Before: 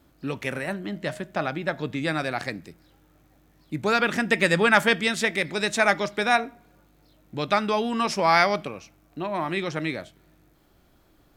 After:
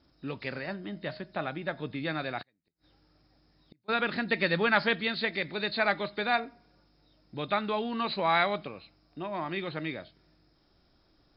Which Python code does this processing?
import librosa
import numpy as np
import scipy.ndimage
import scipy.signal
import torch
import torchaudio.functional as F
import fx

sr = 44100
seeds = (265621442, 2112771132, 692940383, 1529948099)

y = fx.freq_compress(x, sr, knee_hz=3600.0, ratio=4.0)
y = fx.gate_flip(y, sr, shuts_db=-33.0, range_db=-36, at=(2.41, 3.88), fade=0.02)
y = y * librosa.db_to_amplitude(-6.5)